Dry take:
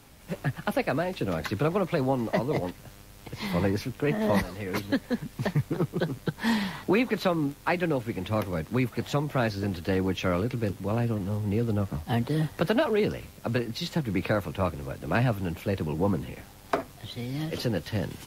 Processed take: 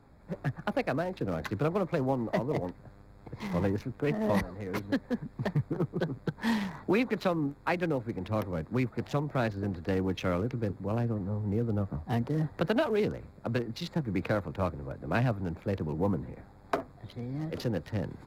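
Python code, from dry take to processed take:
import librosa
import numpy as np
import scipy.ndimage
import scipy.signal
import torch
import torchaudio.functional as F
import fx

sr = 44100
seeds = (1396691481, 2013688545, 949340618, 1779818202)

y = fx.wiener(x, sr, points=15)
y = y * 10.0 ** (-3.0 / 20.0)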